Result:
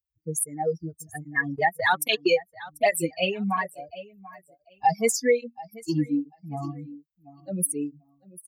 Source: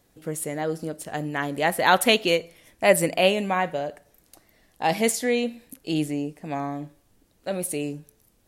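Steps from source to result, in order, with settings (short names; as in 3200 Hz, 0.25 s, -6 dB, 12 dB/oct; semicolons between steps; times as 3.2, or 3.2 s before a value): per-bin expansion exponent 3; HPF 67 Hz; low shelf 140 Hz -6 dB; compressor 3:1, threshold -41 dBFS, peak gain reduction 19 dB; 1.54–2.31 transient shaper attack +2 dB, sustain -12 dB; feedback echo 0.742 s, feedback 20%, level -20 dB; maximiser +26.5 dB; tape flanging out of phase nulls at 1.2 Hz, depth 4.3 ms; gain -6 dB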